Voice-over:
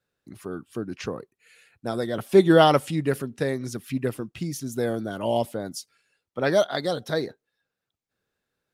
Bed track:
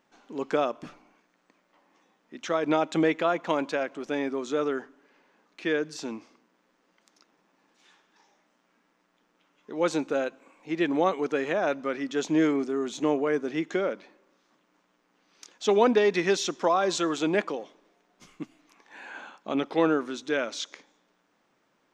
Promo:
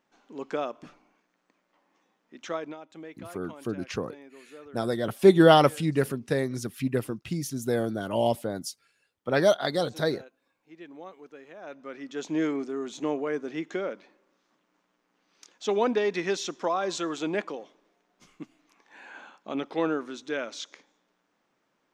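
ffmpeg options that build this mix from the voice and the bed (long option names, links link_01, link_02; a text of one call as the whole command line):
ffmpeg -i stem1.wav -i stem2.wav -filter_complex "[0:a]adelay=2900,volume=-0.5dB[link_01];[1:a]volume=11dB,afade=type=out:start_time=2.54:duration=0.21:silence=0.177828,afade=type=in:start_time=11.56:duration=0.87:silence=0.158489[link_02];[link_01][link_02]amix=inputs=2:normalize=0" out.wav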